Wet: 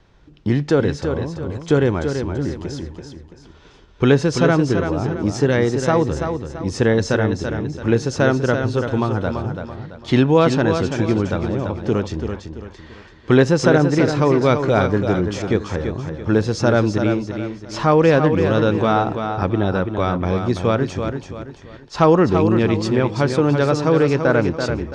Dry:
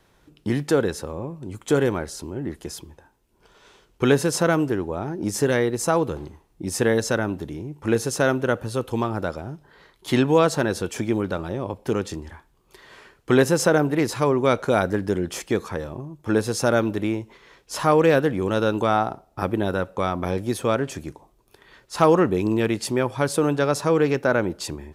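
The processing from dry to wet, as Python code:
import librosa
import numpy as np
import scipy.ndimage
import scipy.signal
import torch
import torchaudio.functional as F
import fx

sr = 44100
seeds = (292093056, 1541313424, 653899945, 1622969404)

p1 = scipy.signal.sosfilt(scipy.signal.butter(4, 6000.0, 'lowpass', fs=sr, output='sos'), x)
p2 = fx.low_shelf(p1, sr, hz=150.0, db=9.5)
p3 = p2 + fx.echo_feedback(p2, sr, ms=335, feedback_pct=37, wet_db=-7, dry=0)
y = p3 * librosa.db_to_amplitude(2.0)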